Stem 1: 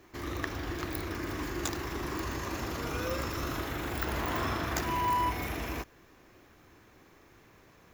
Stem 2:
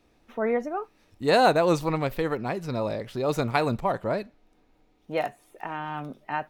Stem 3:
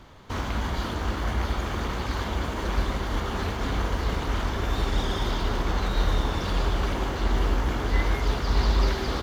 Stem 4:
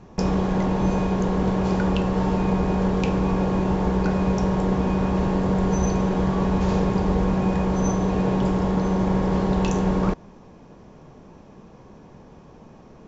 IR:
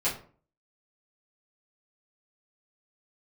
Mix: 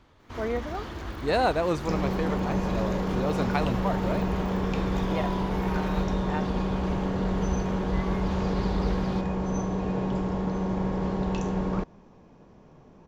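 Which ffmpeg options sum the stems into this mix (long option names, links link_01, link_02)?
-filter_complex "[0:a]alimiter=level_in=5dB:limit=-24dB:level=0:latency=1,volume=-5dB,adelay=200,volume=-3dB[link_01];[1:a]volume=-4.5dB[link_02];[2:a]volume=-9.5dB[link_03];[3:a]adelay=1700,volume=-6.5dB[link_04];[link_01][link_02][link_03][link_04]amix=inputs=4:normalize=0,highshelf=frequency=8800:gain=-9.5"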